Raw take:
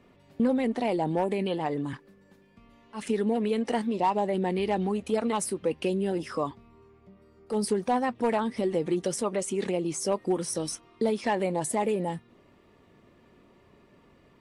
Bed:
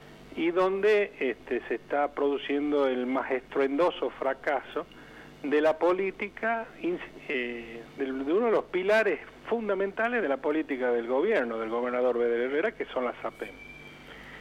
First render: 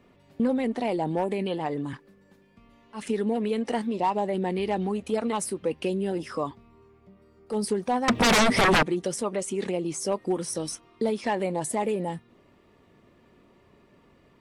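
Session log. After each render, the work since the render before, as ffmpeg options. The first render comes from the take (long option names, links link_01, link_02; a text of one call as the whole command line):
ffmpeg -i in.wav -filter_complex "[0:a]asettb=1/sr,asplit=3[link_01][link_02][link_03];[link_01]atrim=end=8.084[link_04];[link_02]atrim=start=8.08:end=8.83,asetpts=PTS-STARTPTS,afade=type=in:duration=0.004:curve=qsin,afade=type=out:start_time=0.746:duration=0.004:curve=qsin,aeval=exprs='0.158*sin(PI/2*6.31*val(0)/0.158)':channel_layout=same[link_05];[link_03]atrim=start=8.826[link_06];[link_04][link_05]acrossfade=duration=0.004:curve1=hsin:curve2=qsin[link_07];[link_07][link_06]acrossfade=duration=0.004:curve1=qsin:curve2=hsin" out.wav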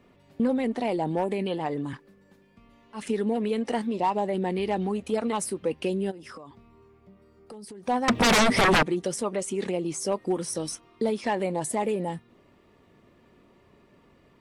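ffmpeg -i in.wav -filter_complex "[0:a]asplit=3[link_01][link_02][link_03];[link_01]afade=type=out:start_time=6.1:duration=0.02[link_04];[link_02]acompressor=threshold=-39dB:ratio=16:attack=3.2:release=140:knee=1:detection=peak,afade=type=in:start_time=6.1:duration=0.02,afade=type=out:start_time=7.83:duration=0.02[link_05];[link_03]afade=type=in:start_time=7.83:duration=0.02[link_06];[link_04][link_05][link_06]amix=inputs=3:normalize=0" out.wav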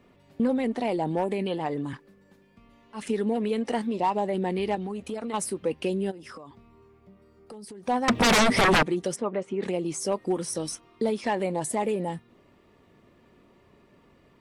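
ffmpeg -i in.wav -filter_complex "[0:a]asettb=1/sr,asplit=3[link_01][link_02][link_03];[link_01]atrim=end=4.754[link_04];[link_02]atrim=start=4.75:end=5.34,asetpts=PTS-STARTPTS,afade=type=in:duration=0.004:curve=qsin,afade=type=out:start_time=0.586:duration=0.004:curve=qsin,acompressor=threshold=-29dB:ratio=6:attack=3.2:release=140:knee=1:detection=peak[link_05];[link_03]atrim=start=5.336[link_06];[link_04][link_05]acrossfade=duration=0.004:curve1=hsin:curve2=qsin[link_07];[link_07][link_06]acrossfade=duration=0.004:curve1=qsin:curve2=hsin,asplit=3[link_08][link_09][link_10];[link_08]afade=type=out:start_time=9.15:duration=0.02[link_11];[link_09]highpass=100,lowpass=2200,afade=type=in:start_time=9.15:duration=0.02,afade=type=out:start_time=9.62:duration=0.02[link_12];[link_10]afade=type=in:start_time=9.62:duration=0.02[link_13];[link_11][link_12][link_13]amix=inputs=3:normalize=0" out.wav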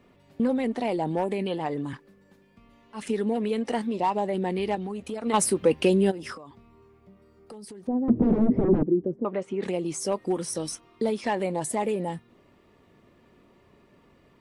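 ffmpeg -i in.wav -filter_complex "[0:a]asplit=3[link_01][link_02][link_03];[link_01]afade=type=out:start_time=5.25:duration=0.02[link_04];[link_02]acontrast=85,afade=type=in:start_time=5.25:duration=0.02,afade=type=out:start_time=6.33:duration=0.02[link_05];[link_03]afade=type=in:start_time=6.33:duration=0.02[link_06];[link_04][link_05][link_06]amix=inputs=3:normalize=0,asettb=1/sr,asplit=3[link_07][link_08][link_09];[link_07]atrim=end=7.874[link_10];[link_08]atrim=start=7.87:end=9.25,asetpts=PTS-STARTPTS,afade=type=in:duration=0.004:curve=qsin,afade=type=out:start_time=1.376:duration=0.004:curve=qsin,lowpass=frequency=330:width_type=q:width=1.9[link_11];[link_09]atrim=start=9.246[link_12];[link_10][link_11]acrossfade=duration=0.004:curve1=hsin:curve2=qsin[link_13];[link_13][link_12]acrossfade=duration=0.004:curve1=qsin:curve2=hsin" out.wav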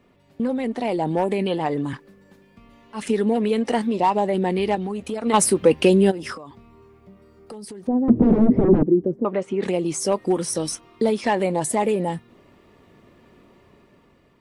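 ffmpeg -i in.wav -af "dynaudnorm=framelen=260:gausssize=7:maxgain=6dB" out.wav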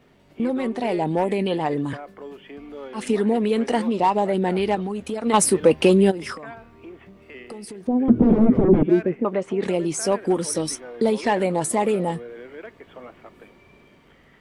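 ffmpeg -i in.wav -i bed.wav -filter_complex "[1:a]volume=-11.5dB[link_01];[0:a][link_01]amix=inputs=2:normalize=0" out.wav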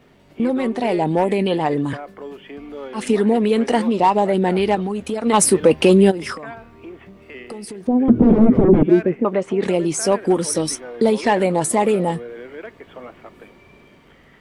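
ffmpeg -i in.wav -af "volume=4dB,alimiter=limit=-3dB:level=0:latency=1" out.wav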